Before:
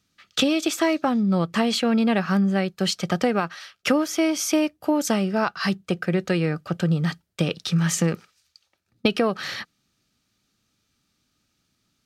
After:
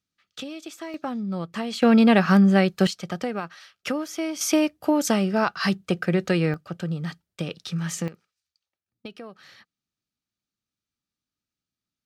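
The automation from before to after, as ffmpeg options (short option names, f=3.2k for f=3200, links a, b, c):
-af "asetnsamples=n=441:p=0,asendcmd='0.94 volume volume -8dB;1.82 volume volume 4.5dB;2.87 volume volume -7dB;4.41 volume volume 0.5dB;6.54 volume volume -7dB;8.08 volume volume -19dB',volume=-15dB"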